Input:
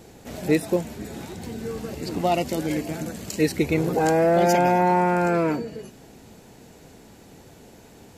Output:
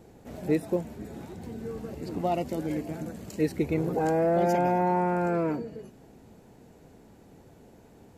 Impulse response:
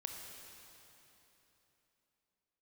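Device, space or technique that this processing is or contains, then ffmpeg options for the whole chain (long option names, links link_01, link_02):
through cloth: -af "highshelf=frequency=2300:gain=-15,highshelf=frequency=6500:gain=8.5,volume=-4.5dB"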